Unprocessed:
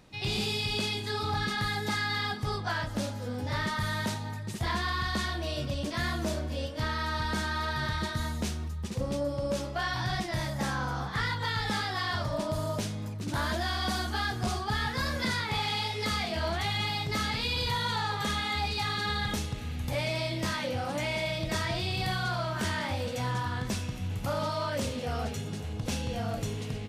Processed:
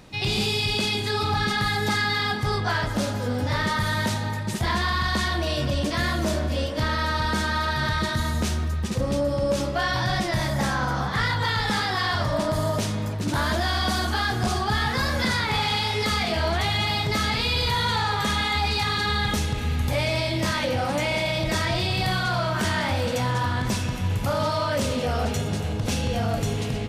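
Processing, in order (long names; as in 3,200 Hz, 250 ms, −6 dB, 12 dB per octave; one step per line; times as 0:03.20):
brickwall limiter −26 dBFS, peak gain reduction 3.5 dB
delay with a low-pass on its return 156 ms, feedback 80%, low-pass 2,900 Hz, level −14.5 dB
level +9 dB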